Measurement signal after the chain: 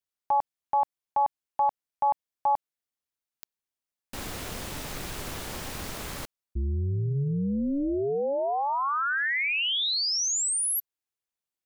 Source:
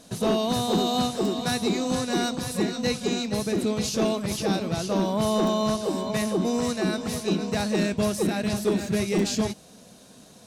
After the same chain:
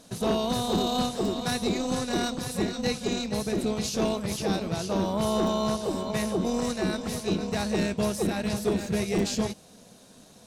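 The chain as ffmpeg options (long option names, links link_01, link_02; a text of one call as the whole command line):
ffmpeg -i in.wav -af "tremolo=f=280:d=0.519" out.wav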